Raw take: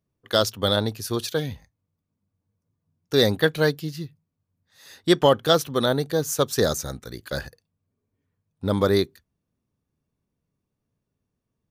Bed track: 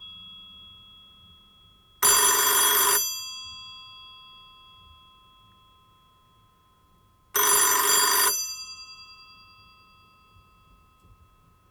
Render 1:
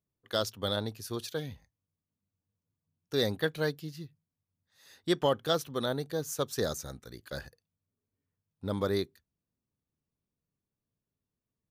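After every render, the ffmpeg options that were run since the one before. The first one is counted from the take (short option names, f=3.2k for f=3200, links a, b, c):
-af "volume=-10dB"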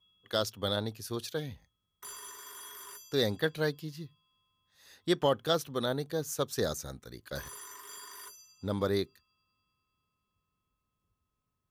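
-filter_complex "[1:a]volume=-26.5dB[a];[0:a][a]amix=inputs=2:normalize=0"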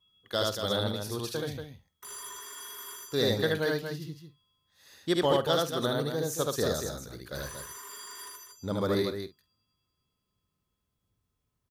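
-filter_complex "[0:a]asplit=2[a][b];[b]adelay=49,volume=-14dB[c];[a][c]amix=inputs=2:normalize=0,aecho=1:1:75.8|233.2:0.891|0.447"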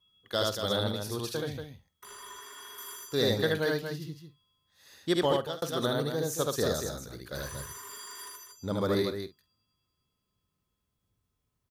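-filter_complex "[0:a]asettb=1/sr,asplit=3[a][b][c];[a]atrim=end=1.414[d];[b]atrim=start=1.41:end=2.78,asetpts=PTS-STARTPTS,afade=t=in:d=0.004:c=qsin,afade=t=out:st=1.366:d=0.004:c=qsin,acrossover=split=4200[e][f];[f]acompressor=threshold=-50dB:ratio=4:attack=1:release=60[g];[e][g]amix=inputs=2:normalize=0[h];[c]atrim=start=2.776[i];[d][h]acrossfade=d=0.004:c1=hsin:c2=qsin[j];[j][i]acrossfade=d=0.004:c1=qsin:c2=hsin,asettb=1/sr,asplit=3[k][l][m];[k]atrim=end=7.524[n];[l]atrim=start=7.52:end=7.98,asetpts=PTS-STARTPTS,afade=t=in:d=0.004:c=qsin,afade=t=out:st=0.456:d=0.004:c=qsin,equalizer=f=97:w=0.97:g=12.5[o];[m]atrim=start=7.976[p];[n][o]acrossfade=d=0.004:c1=hsin:c2=qsin[q];[q][p]acrossfade=d=0.004:c1=qsin:c2=hsin,asplit=2[r][s];[r]atrim=end=5.62,asetpts=PTS-STARTPTS,afade=t=out:st=5.14:d=0.48:c=qsin[t];[s]atrim=start=5.62,asetpts=PTS-STARTPTS,afade=t=in:d=0.004:c=hsin[u];[t][u]concat=n=2:v=0:a=1"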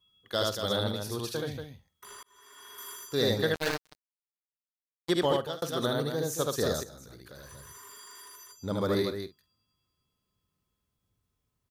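-filter_complex "[0:a]asplit=3[a][b][c];[a]afade=t=out:st=3.53:d=0.02[d];[b]acrusher=bits=3:mix=0:aa=0.5,afade=t=in:st=3.53:d=0.02,afade=t=out:st=5.09:d=0.02[e];[c]afade=t=in:st=5.09:d=0.02[f];[d][e][f]amix=inputs=3:normalize=0,asettb=1/sr,asplit=3[g][h][i];[g]atrim=end=6.834[j];[h]atrim=start=6.83:end=8.56,asetpts=PTS-STARTPTS,afade=t=in:d=0.004:c=qsin,afade=t=out:st=1.726:d=0.004:c=qsin,acompressor=threshold=-45dB:ratio=5:attack=3.2:release=140:knee=1:detection=peak[k];[i]atrim=start=8.556[l];[j][k]acrossfade=d=0.004:c1=hsin:c2=qsin[m];[m][l]acrossfade=d=0.004:c1=qsin:c2=hsin,asplit=2[n][o];[n]atrim=end=2.23,asetpts=PTS-STARTPTS,afade=t=out:st=2.226:d=0.004:c=hsin[p];[o]atrim=start=2.23,asetpts=PTS-STARTPTS,afade=t=in:d=0.62[q];[p][q]concat=n=2:v=0:a=1"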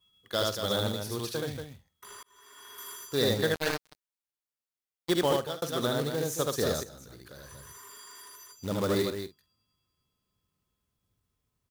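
-af "acrusher=bits=3:mode=log:mix=0:aa=0.000001"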